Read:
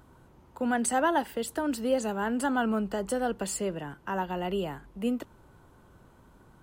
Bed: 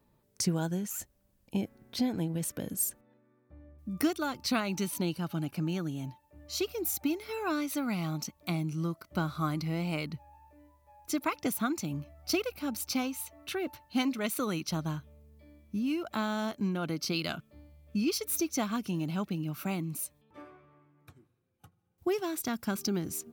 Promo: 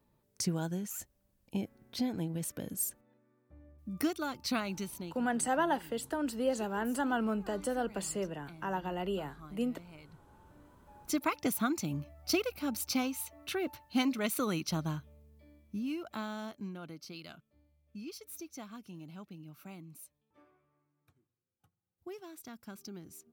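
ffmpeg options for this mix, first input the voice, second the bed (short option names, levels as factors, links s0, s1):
-filter_complex "[0:a]adelay=4550,volume=0.596[s0];[1:a]volume=6.31,afade=t=out:st=4.62:d=0.6:silence=0.149624,afade=t=in:st=10.12:d=0.75:silence=0.105925,afade=t=out:st=14.62:d=2.43:silence=0.188365[s1];[s0][s1]amix=inputs=2:normalize=0"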